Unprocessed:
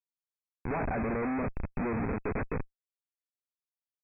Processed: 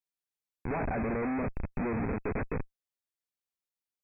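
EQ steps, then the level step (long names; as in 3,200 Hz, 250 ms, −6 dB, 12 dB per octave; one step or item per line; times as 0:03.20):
parametric band 1,200 Hz −2 dB
0.0 dB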